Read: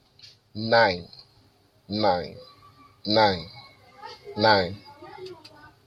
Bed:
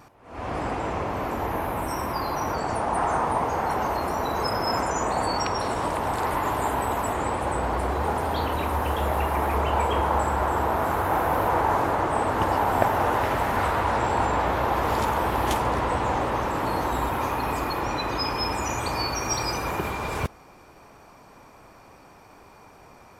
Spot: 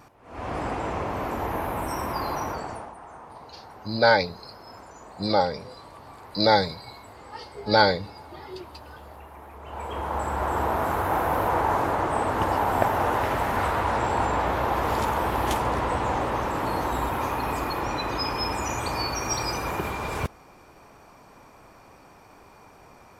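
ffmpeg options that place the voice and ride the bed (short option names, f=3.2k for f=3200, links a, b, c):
-filter_complex "[0:a]adelay=3300,volume=0.5dB[a];[1:a]volume=18dB,afade=t=out:st=2.32:d=0.63:silence=0.112202,afade=t=in:st=9.6:d=1.02:silence=0.112202[b];[a][b]amix=inputs=2:normalize=0"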